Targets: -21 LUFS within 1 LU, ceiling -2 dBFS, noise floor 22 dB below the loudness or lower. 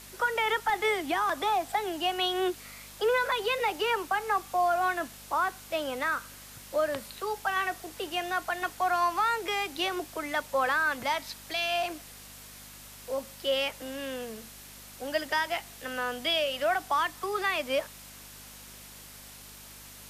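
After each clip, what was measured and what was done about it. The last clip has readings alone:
hum 50 Hz; highest harmonic 250 Hz; hum level -53 dBFS; noise floor -48 dBFS; noise floor target -52 dBFS; loudness -29.5 LUFS; peak level -17.0 dBFS; loudness target -21.0 LUFS
-> de-hum 50 Hz, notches 5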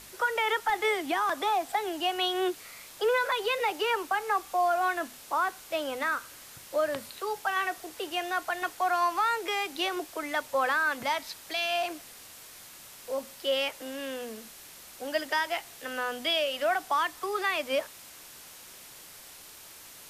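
hum not found; noise floor -49 dBFS; noise floor target -52 dBFS
-> noise reduction 6 dB, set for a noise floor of -49 dBFS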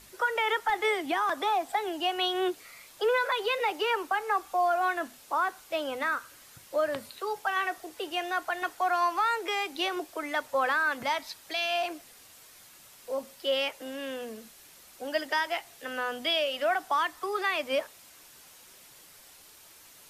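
noise floor -54 dBFS; loudness -29.5 LUFS; peak level -17.5 dBFS; loudness target -21.0 LUFS
-> trim +8.5 dB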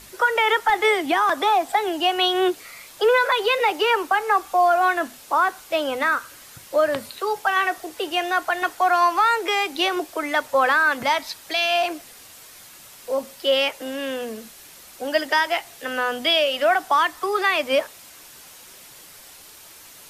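loudness -21.0 LUFS; peak level -9.0 dBFS; noise floor -45 dBFS

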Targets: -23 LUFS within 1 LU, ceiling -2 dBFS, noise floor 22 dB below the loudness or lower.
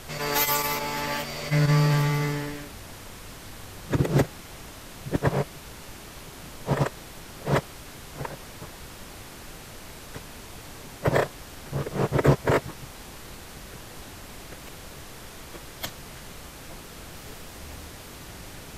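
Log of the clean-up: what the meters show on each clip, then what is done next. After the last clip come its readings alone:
noise floor -44 dBFS; noise floor target -49 dBFS; loudness -26.5 LUFS; peak level -7.0 dBFS; loudness target -23.0 LUFS
-> noise print and reduce 6 dB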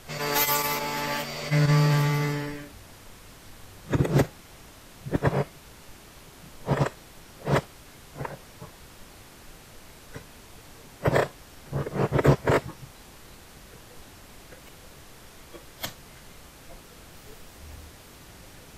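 noise floor -49 dBFS; loudness -26.5 LUFS; peak level -7.0 dBFS; loudness target -23.0 LUFS
-> trim +3.5 dB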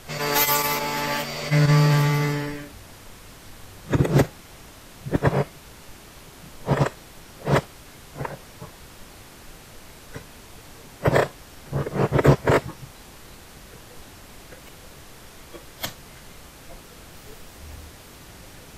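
loudness -23.0 LUFS; peak level -3.0 dBFS; noise floor -46 dBFS

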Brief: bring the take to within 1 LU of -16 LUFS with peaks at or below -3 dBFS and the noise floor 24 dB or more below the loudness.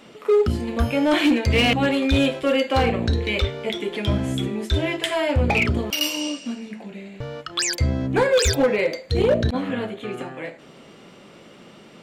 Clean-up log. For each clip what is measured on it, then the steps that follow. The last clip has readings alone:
clipped samples 1.0%; clipping level -12.5 dBFS; loudness -21.5 LUFS; peak level -12.5 dBFS; loudness target -16.0 LUFS
-> clip repair -12.5 dBFS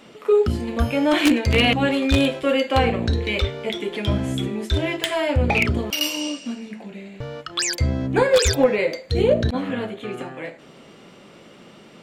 clipped samples 0.0%; loudness -21.0 LUFS; peak level -3.5 dBFS; loudness target -16.0 LUFS
-> trim +5 dB; peak limiter -3 dBFS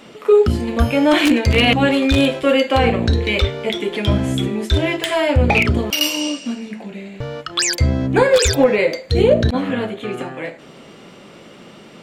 loudness -16.5 LUFS; peak level -3.0 dBFS; noise floor -42 dBFS

